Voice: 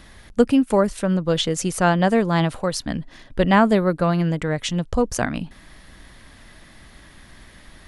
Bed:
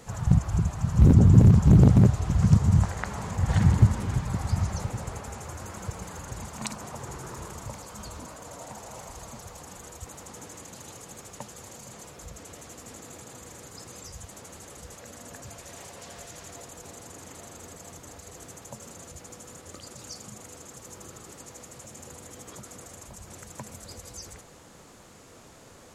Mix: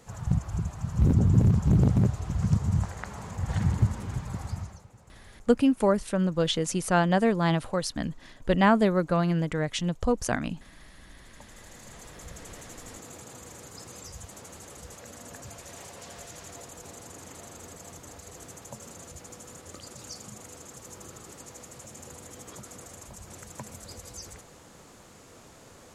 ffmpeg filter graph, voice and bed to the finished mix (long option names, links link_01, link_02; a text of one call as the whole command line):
ffmpeg -i stem1.wav -i stem2.wav -filter_complex "[0:a]adelay=5100,volume=-5dB[link_01];[1:a]volume=14.5dB,afade=type=out:start_time=4.42:duration=0.4:silence=0.177828,afade=type=in:start_time=11.16:duration=1.2:silence=0.1[link_02];[link_01][link_02]amix=inputs=2:normalize=0" out.wav